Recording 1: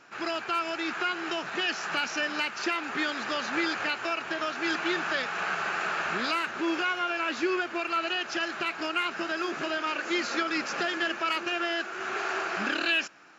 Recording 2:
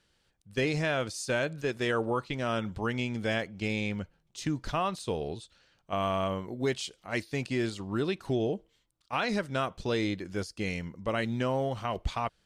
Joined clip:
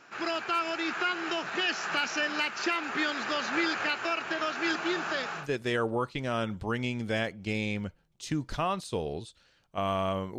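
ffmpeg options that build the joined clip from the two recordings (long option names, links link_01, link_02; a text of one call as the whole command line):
ffmpeg -i cue0.wav -i cue1.wav -filter_complex "[0:a]asettb=1/sr,asplit=3[link_01][link_02][link_03];[link_01]atrim=end=4.724[link_04];[link_02]atrim=start=4.72:end=5.48,asetpts=PTS-STARTPTS,afade=type=in:duration=0.004:curve=qsin,afade=type=out:start_time=0.756:duration=0.004:curve=qsin,equalizer=frequency=2100:width_type=o:width=1.5:gain=-4.5[link_05];[link_03]atrim=start=5.476[link_06];[link_04][link_05]acrossfade=duration=0.004:curve1=hsin:curve2=qsin[link_07];[link_07][link_06]acrossfade=duration=0.004:curve1=qsin:curve2=hsin,apad=whole_dur=10.38,atrim=end=10.38,atrim=end=5.48,asetpts=PTS-STARTPTS[link_08];[1:a]atrim=start=1.47:end=6.53,asetpts=PTS-STARTPTS[link_09];[link_08][link_09]acrossfade=duration=0.16:curve1=tri:curve2=tri" out.wav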